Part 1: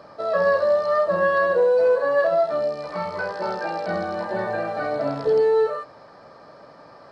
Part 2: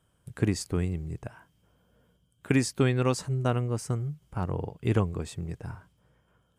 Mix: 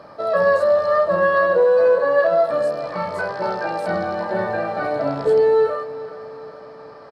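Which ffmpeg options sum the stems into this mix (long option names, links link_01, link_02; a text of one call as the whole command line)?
ffmpeg -i stem1.wav -i stem2.wav -filter_complex "[0:a]highshelf=frequency=7600:gain=-5,volume=3dB,asplit=2[link_01][link_02];[link_02]volume=-16dB[link_03];[1:a]aemphasis=mode=production:type=75kf,acompressor=threshold=-30dB:ratio=6,volume=-16dB[link_04];[link_03]aecho=0:1:421|842|1263|1684|2105|2526|2947|3368:1|0.53|0.281|0.149|0.0789|0.0418|0.0222|0.0117[link_05];[link_01][link_04][link_05]amix=inputs=3:normalize=0,equalizer=frequency=6400:width=1.5:gain=-2.5" out.wav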